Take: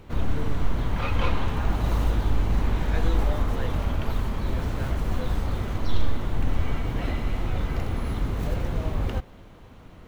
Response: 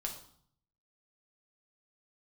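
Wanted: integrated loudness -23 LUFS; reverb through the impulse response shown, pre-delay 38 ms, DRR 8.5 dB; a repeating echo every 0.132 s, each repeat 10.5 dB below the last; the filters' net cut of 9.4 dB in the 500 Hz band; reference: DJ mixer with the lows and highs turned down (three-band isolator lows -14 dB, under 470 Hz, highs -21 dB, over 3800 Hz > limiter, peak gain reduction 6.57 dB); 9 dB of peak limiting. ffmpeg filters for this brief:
-filter_complex "[0:a]equalizer=f=500:t=o:g=-7,alimiter=limit=-18.5dB:level=0:latency=1,aecho=1:1:132|264|396:0.299|0.0896|0.0269,asplit=2[a][b];[1:a]atrim=start_sample=2205,adelay=38[c];[b][c]afir=irnorm=-1:irlink=0,volume=-8.5dB[d];[a][d]amix=inputs=2:normalize=0,acrossover=split=470 3800:gain=0.2 1 0.0891[e][f][g];[e][f][g]amix=inputs=3:normalize=0,volume=17.5dB,alimiter=limit=-10dB:level=0:latency=1"

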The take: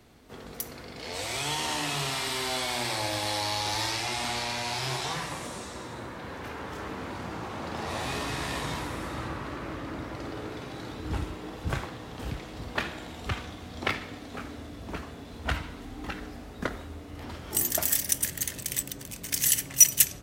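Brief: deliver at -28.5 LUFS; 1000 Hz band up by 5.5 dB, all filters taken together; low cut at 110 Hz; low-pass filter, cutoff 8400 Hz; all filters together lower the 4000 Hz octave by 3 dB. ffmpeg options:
-af "highpass=110,lowpass=8.4k,equalizer=f=1k:t=o:g=7,equalizer=f=4k:t=o:g=-4,volume=2.5dB"

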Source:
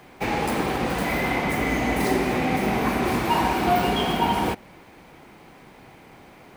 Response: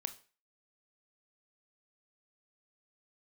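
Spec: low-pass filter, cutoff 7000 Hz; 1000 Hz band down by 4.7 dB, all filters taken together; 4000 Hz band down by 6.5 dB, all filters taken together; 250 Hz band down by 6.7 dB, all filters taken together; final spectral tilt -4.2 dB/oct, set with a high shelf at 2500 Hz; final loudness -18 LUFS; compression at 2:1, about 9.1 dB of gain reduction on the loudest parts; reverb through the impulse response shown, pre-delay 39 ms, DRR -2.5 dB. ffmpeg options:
-filter_complex "[0:a]lowpass=7k,equalizer=f=250:t=o:g=-8.5,equalizer=f=1k:t=o:g=-5,highshelf=f=2.5k:g=-3.5,equalizer=f=4k:t=o:g=-5.5,acompressor=threshold=-38dB:ratio=2,asplit=2[a][b];[1:a]atrim=start_sample=2205,adelay=39[c];[b][c]afir=irnorm=-1:irlink=0,volume=3.5dB[d];[a][d]amix=inputs=2:normalize=0,volume=13.5dB"

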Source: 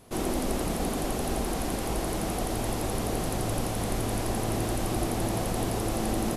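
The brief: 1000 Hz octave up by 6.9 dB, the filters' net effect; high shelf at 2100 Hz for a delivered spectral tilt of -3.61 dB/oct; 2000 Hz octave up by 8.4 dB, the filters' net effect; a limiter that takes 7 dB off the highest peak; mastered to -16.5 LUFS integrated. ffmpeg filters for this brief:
-af "equalizer=f=1k:t=o:g=7,equalizer=f=2k:t=o:g=3.5,highshelf=f=2.1k:g=8.5,volume=10.5dB,alimiter=limit=-6dB:level=0:latency=1"

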